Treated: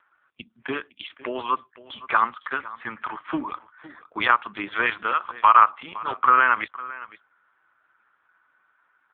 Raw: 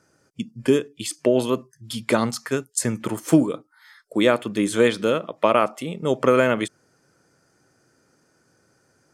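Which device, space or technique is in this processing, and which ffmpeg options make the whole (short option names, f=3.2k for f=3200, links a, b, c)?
satellite phone: -filter_complex "[0:a]asettb=1/sr,asplit=3[a][b][c];[a]atrim=end=0.794[d];[b]atrim=start=0.79:end=1.94,asetpts=PTS-STARTPTS,afade=t=in:d=0.004:c=qsin,afade=t=out:st=1.146:d=0.004:c=qsin,lowpass=f=9.9k:w=0.5412,lowpass=f=9.9k:w=1.3066[e];[c]atrim=start=1.936[f];[d][e]acrossfade=d=0.004:c1=hsin:c2=qsin[g];[g][f]acrossfade=d=0.004:c1=qsin:c2=hsin,highpass=310,lowpass=3.3k,lowshelf=f=770:t=q:w=3:g=-10.5,aecho=1:1:509:0.126,volume=4dB" -ar 8000 -c:a libopencore_amrnb -b:a 5150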